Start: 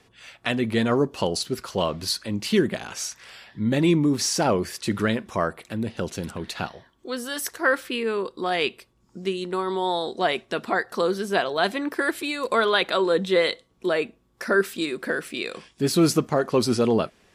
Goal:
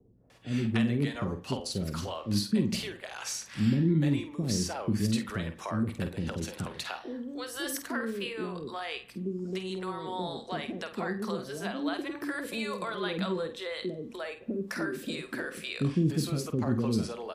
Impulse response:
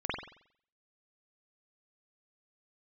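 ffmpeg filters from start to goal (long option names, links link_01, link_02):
-filter_complex "[0:a]acrossover=split=220[link_01][link_02];[link_02]acompressor=threshold=-34dB:ratio=5[link_03];[link_01][link_03]amix=inputs=2:normalize=0,asplit=2[link_04][link_05];[link_05]adelay=49,volume=-9.5dB[link_06];[link_04][link_06]amix=inputs=2:normalize=0,acrossover=split=480[link_07][link_08];[link_08]adelay=300[link_09];[link_07][link_09]amix=inputs=2:normalize=0,asplit=2[link_10][link_11];[1:a]atrim=start_sample=2205[link_12];[link_11][link_12]afir=irnorm=-1:irlink=0,volume=-20.5dB[link_13];[link_10][link_13]amix=inputs=2:normalize=0"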